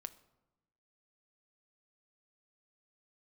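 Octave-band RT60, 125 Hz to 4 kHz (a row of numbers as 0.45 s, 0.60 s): 1.3 s, 1.3 s, 1.0 s, 1.0 s, 0.75 s, 0.55 s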